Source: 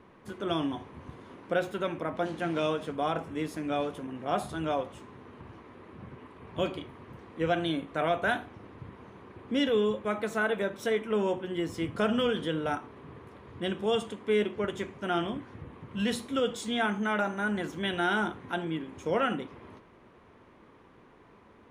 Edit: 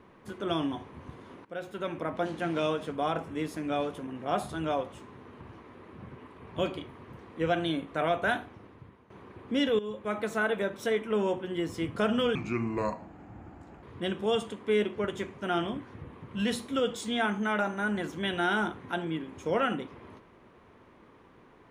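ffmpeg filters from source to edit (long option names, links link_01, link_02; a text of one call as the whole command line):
ffmpeg -i in.wav -filter_complex "[0:a]asplit=6[link_01][link_02][link_03][link_04][link_05][link_06];[link_01]atrim=end=1.45,asetpts=PTS-STARTPTS,afade=type=out:start_time=1.446:duration=0.004:curve=hsin:silence=0.133352[link_07];[link_02]atrim=start=1.45:end=9.1,asetpts=PTS-STARTPTS,afade=type=in:duration=0.57:silence=0.133352,afade=type=out:start_time=6.94:duration=0.71:silence=0.199526[link_08];[link_03]atrim=start=9.1:end=9.79,asetpts=PTS-STARTPTS,afade=type=in:duration=0.004:curve=hsin:silence=0.199526,afade=type=out:start_time=0.686:duration=0.004:curve=hsin:silence=0.177828[link_09];[link_04]atrim=start=9.79:end=12.354,asetpts=PTS-STARTPTS,afade=type=in:duration=0.39:silence=0.177828[link_10];[link_05]atrim=start=12.35:end=13.43,asetpts=PTS-STARTPTS,asetrate=32193,aresample=44100[link_11];[link_06]atrim=start=13.426[link_12];[link_07][link_08][link_09][link_10]concat=n=4:v=0:a=1[link_13];[link_13][link_11]acrossfade=duration=0.004:curve1=hsin:curve2=hsin[link_14];[link_14][link_12]acrossfade=duration=0.004:curve1=hsin:curve2=hsin" out.wav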